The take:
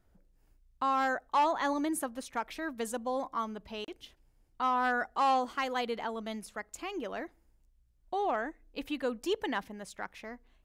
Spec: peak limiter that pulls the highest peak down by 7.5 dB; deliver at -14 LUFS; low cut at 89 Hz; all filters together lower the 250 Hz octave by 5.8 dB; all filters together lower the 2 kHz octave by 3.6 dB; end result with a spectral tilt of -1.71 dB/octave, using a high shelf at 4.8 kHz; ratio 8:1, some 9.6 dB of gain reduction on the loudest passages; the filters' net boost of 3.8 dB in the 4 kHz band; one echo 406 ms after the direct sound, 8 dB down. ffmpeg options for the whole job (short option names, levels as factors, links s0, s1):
-af "highpass=89,equalizer=f=250:t=o:g=-7,equalizer=f=2000:t=o:g=-7,equalizer=f=4000:t=o:g=5,highshelf=f=4800:g=7,acompressor=threshold=0.02:ratio=8,alimiter=level_in=2.11:limit=0.0631:level=0:latency=1,volume=0.473,aecho=1:1:406:0.398,volume=22.4"